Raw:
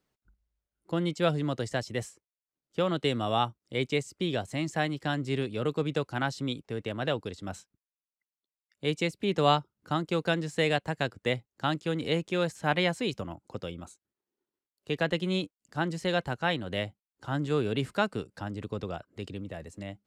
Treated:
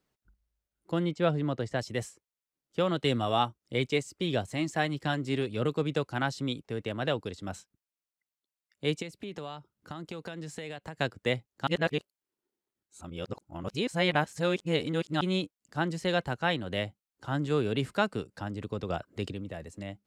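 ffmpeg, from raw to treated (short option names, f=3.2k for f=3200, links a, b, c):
-filter_complex "[0:a]asettb=1/sr,asplit=3[a][b][c];[a]atrim=end=1.054[d];[b]atrim=start=1.05:end=1.79,asetpts=PTS-STARTPTS,afade=t=in:d=0.004:c=qsin,afade=t=out:st=0.736:d=0.004:c=qsin,lowpass=f=2.3k:p=1[e];[c]atrim=start=1.786[f];[d][e]acrossfade=d=0.004:c1=hsin:c2=qsin[g];[g][f]acrossfade=d=0.004:c1=qsin:c2=hsin,asplit=3[h][i][j];[h]afade=t=out:st=2.95:d=0.02[k];[i]aphaser=in_gain=1:out_gain=1:delay=4:decay=0.27:speed=1.6:type=triangular,afade=t=in:st=2.95:d=0.02,afade=t=out:st=5.68:d=0.02[l];[j]afade=t=in:st=5.68:d=0.02[m];[k][l][m]amix=inputs=3:normalize=0,asplit=3[n][o][p];[n]afade=t=out:st=9.01:d=0.02[q];[o]acompressor=threshold=-35dB:ratio=10:attack=3.2:release=140:knee=1:detection=peak,afade=t=in:st=9.01:d=0.02,afade=t=out:st=10.96:d=0.02[r];[p]afade=t=in:st=10.96:d=0.02[s];[q][r][s]amix=inputs=3:normalize=0,asplit=5[t][u][v][w][x];[t]atrim=end=11.672[y];[u]atrim=start=11.668:end=15.212,asetpts=PTS-STARTPTS,areverse[z];[v]atrim=start=15.208:end=18.902[aa];[w]atrim=start=18.898:end=19.322,asetpts=PTS-STARTPTS,volume=4.5dB[ab];[x]atrim=start=19.318[ac];[y][z]acrossfade=d=0.004:c1=hsin:c2=hsin[ad];[ad][aa]acrossfade=d=0.004:c1=hsin:c2=hsin[ae];[ae][ab]acrossfade=d=0.004:c1=hsin:c2=hsin[af];[af][ac]acrossfade=d=0.004:c1=hsin:c2=hsin"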